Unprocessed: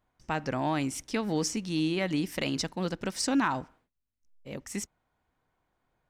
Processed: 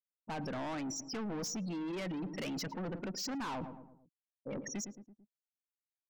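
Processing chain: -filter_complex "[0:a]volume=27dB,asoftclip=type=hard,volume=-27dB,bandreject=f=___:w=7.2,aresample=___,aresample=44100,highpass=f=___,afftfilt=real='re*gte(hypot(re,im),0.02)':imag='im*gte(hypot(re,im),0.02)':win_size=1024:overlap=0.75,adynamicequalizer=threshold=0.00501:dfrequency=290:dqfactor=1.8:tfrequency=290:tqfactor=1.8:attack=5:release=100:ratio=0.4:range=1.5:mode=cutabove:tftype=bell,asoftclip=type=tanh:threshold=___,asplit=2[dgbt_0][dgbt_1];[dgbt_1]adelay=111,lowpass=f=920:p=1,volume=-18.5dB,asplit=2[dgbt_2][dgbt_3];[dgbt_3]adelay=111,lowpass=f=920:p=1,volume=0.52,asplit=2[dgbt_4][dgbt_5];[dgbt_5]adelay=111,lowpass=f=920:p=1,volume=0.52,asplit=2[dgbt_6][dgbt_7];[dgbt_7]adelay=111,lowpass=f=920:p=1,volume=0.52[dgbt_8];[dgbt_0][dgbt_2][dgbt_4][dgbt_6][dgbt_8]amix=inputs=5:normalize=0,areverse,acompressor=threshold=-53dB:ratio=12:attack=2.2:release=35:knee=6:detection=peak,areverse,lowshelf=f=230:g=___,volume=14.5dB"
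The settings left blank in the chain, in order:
3500, 16000, 180, -39dB, 2.5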